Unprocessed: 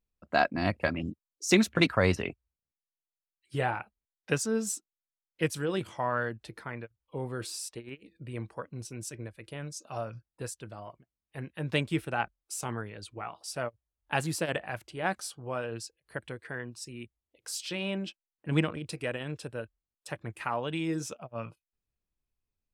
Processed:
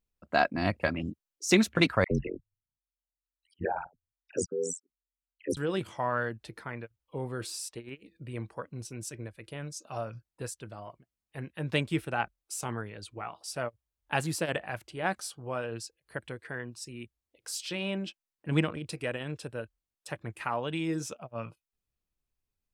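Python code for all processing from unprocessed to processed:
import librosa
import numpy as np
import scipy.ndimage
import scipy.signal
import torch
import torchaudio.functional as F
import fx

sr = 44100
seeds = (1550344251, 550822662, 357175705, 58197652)

y = fx.chain(x, sr, fx.envelope_sharpen(power=3.0),
    fx.dispersion(late='lows', ms=67.0, hz=1200.0),
    fx.ring_mod(carrier_hz=44.0), at=(2.04, 5.57))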